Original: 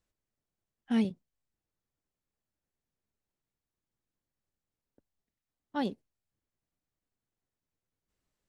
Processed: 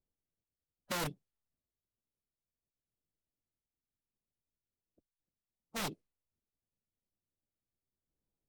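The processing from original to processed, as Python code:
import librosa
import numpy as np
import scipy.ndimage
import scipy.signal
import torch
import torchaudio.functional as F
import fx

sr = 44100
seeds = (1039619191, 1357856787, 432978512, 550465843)

y = fx.env_lowpass(x, sr, base_hz=660.0, full_db=-32.5)
y = (np.mod(10.0 ** (26.5 / 20.0) * y + 1.0, 2.0) - 1.0) / 10.0 ** (26.5 / 20.0)
y = fx.pitch_keep_formants(y, sr, semitones=-4.5)
y = y * librosa.db_to_amplitude(-3.5)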